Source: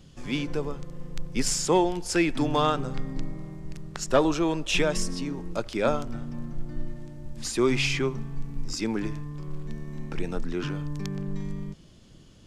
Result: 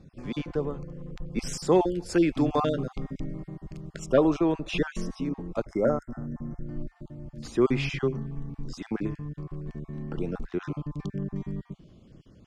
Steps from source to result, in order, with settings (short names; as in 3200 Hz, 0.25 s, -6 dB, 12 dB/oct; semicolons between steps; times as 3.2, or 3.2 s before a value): random spectral dropouts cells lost 26%; HPF 500 Hz 6 dB/oct; tilt -4.5 dB/oct; notch 910 Hz, Q 17; 1.42–4.06 high shelf 4500 Hz +7 dB; 5.65–6.66 spectral gain 2200–5000 Hz -28 dB